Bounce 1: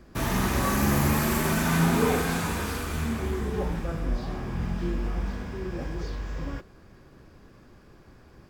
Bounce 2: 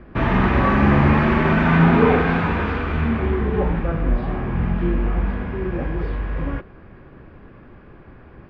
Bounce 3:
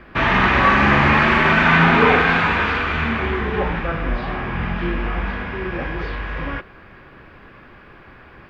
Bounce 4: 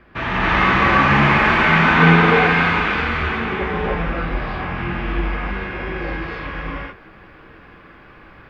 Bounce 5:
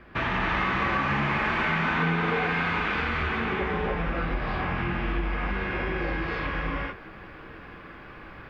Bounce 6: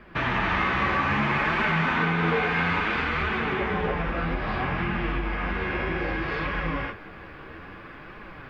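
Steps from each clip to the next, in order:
low-pass 2.7 kHz 24 dB/octave; trim +8.5 dB
tilt shelf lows -8 dB, about 880 Hz; trim +4 dB
gated-style reverb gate 340 ms rising, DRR -6.5 dB; trim -7 dB
compression 4:1, threshold -25 dBFS, peak gain reduction 14.5 dB
flange 0.61 Hz, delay 4.5 ms, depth 9.8 ms, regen +49%; trim +5.5 dB

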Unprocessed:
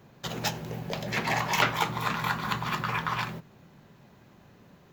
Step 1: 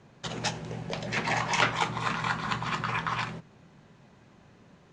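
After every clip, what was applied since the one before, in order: Chebyshev low-pass 9.6 kHz, order 8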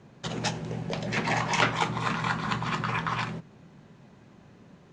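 peaking EQ 220 Hz +4.5 dB 2.4 oct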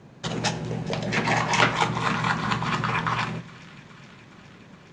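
feedback echo behind a high-pass 417 ms, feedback 74%, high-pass 1.6 kHz, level -20 dB; on a send at -16.5 dB: reverberation RT60 0.90 s, pre-delay 6 ms; on the sum: trim +4 dB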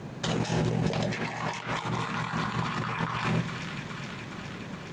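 compressor with a negative ratio -33 dBFS, ratio -1; trim +2.5 dB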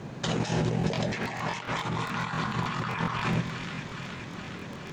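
crackling interface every 0.14 s, samples 1024, repeat, from 0.79 s

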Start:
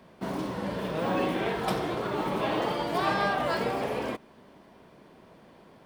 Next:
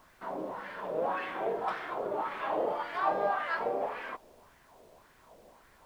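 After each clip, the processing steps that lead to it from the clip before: wah-wah 1.8 Hz 520–1800 Hz, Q 2.3; added noise pink -68 dBFS; trim +2.5 dB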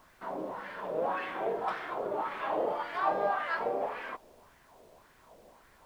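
no audible change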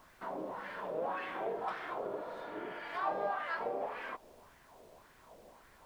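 in parallel at +3 dB: compression, threshold -40 dBFS, peak gain reduction 15.5 dB; on the sum: spectral replace 2.12–2.86 s, 450–3500 Hz both; trim -8 dB

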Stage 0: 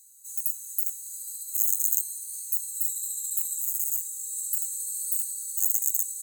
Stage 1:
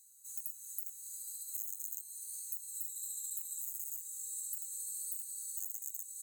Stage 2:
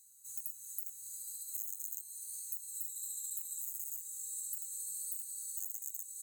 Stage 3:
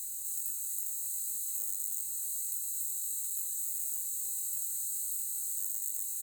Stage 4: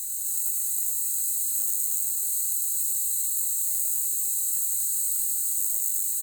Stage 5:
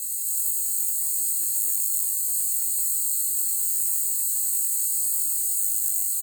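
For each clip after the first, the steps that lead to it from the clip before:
tone controls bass +2 dB, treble -4 dB; compression 5:1, threshold -34 dBFS, peak gain reduction 11.5 dB; trim -3.5 dB
bass shelf 220 Hz +6 dB
spectral levelling over time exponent 0.2; doubling 20 ms -5 dB; trim -3.5 dB
frequency-shifting echo 99 ms, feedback 56%, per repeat +110 Hz, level -3 dB; trim +7 dB
doubling 20 ms -5.5 dB; frequency shift +200 Hz

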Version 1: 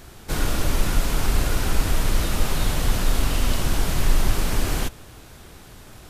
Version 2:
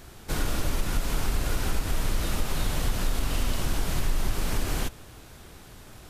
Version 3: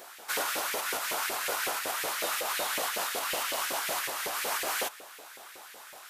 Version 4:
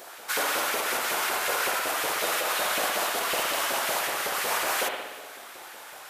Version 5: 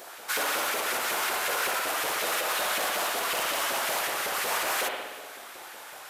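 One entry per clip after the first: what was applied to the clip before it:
compression 3:1, threshold -18 dBFS, peak gain reduction 6 dB; trim -3 dB
treble shelf 11 kHz +7.5 dB; LFO high-pass saw up 5.4 Hz 460–2200 Hz; trim +1 dB
spring tank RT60 1.2 s, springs 59 ms, chirp 50 ms, DRR 1.5 dB; trim +3 dB
transformer saturation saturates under 2 kHz

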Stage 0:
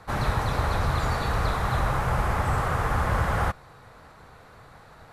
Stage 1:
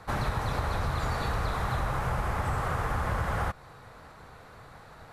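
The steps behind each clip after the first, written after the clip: compression 3:1, threshold -27 dBFS, peak gain reduction 6.5 dB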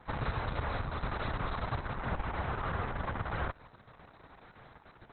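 trim -4.5 dB; Opus 6 kbps 48 kHz

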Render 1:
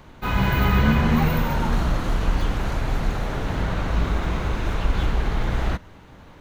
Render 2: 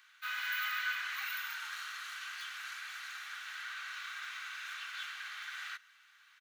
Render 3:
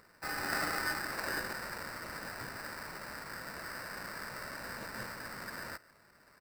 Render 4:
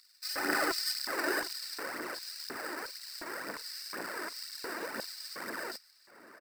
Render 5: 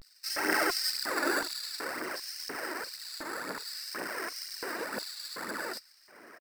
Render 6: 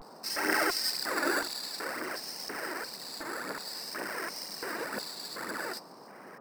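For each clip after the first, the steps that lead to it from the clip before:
Chebyshev high-pass 1.4 kHz, order 4; comb 2.6 ms, depth 33%; trim -6.5 dB
treble shelf 11 kHz +11.5 dB; sample-rate reducer 3.3 kHz, jitter 0%
LFO high-pass square 1.4 Hz 330–4300 Hz; phaser 2 Hz, delay 3.4 ms, feedback 56%; echo from a far wall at 130 m, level -15 dB; trim +1.5 dB
vibrato 0.52 Hz 97 cents; trim +2.5 dB
band noise 160–1100 Hz -51 dBFS

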